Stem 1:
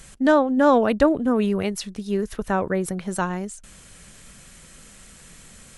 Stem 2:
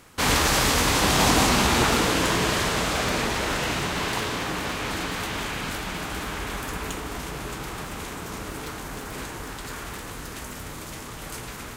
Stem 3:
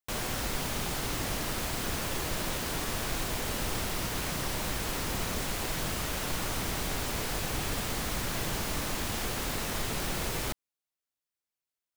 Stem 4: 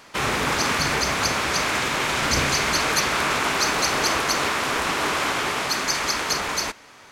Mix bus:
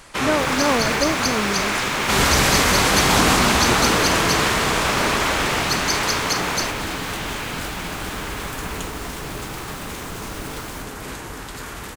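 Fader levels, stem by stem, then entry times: -5.0, +2.0, -4.5, +1.0 dB; 0.00, 1.90, 0.30, 0.00 s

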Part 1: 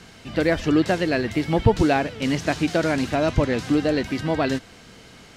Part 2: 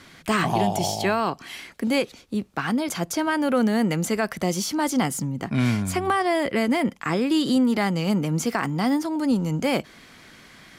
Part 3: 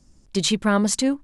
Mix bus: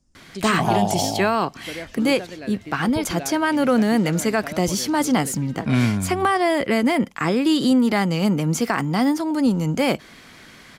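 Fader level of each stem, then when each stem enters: -14.0, +3.0, -10.5 dB; 1.30, 0.15, 0.00 s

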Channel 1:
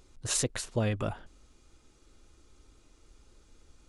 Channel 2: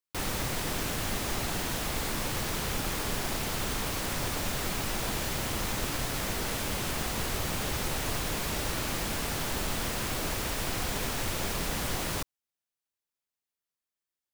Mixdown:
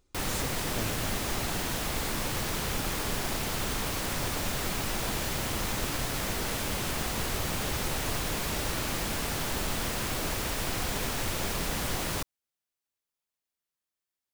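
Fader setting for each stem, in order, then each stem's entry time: -10.5, +0.5 dB; 0.00, 0.00 s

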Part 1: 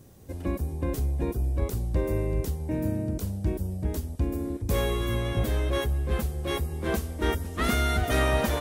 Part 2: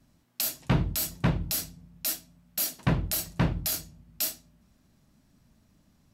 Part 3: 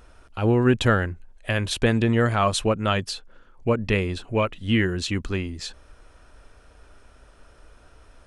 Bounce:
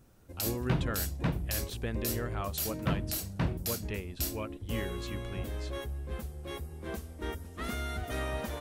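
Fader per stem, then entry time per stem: -11.0, -6.0, -16.5 dB; 0.00, 0.00, 0.00 s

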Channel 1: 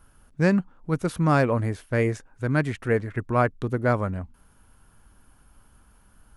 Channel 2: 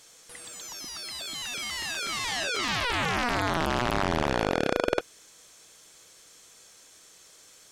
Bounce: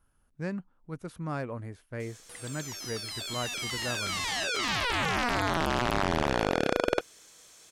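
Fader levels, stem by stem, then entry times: -14.0, -1.0 dB; 0.00, 2.00 s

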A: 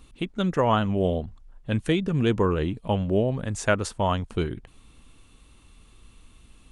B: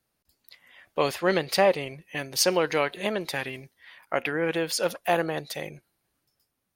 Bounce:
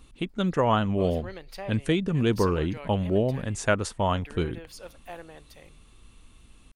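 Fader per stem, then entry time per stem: -1.0, -17.5 dB; 0.00, 0.00 s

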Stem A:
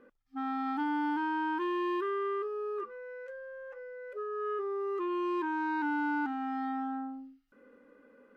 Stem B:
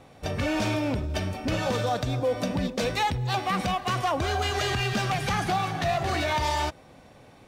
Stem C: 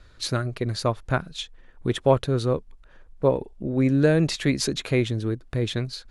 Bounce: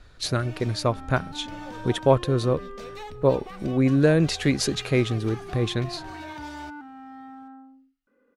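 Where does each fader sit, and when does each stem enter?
-8.0, -15.5, +0.5 dB; 0.55, 0.00, 0.00 s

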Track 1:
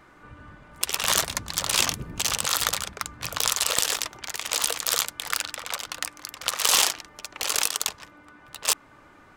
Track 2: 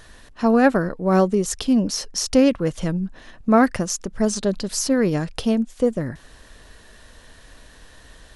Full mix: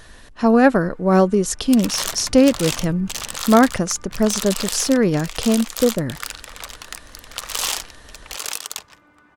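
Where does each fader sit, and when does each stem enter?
-3.5, +2.5 dB; 0.90, 0.00 s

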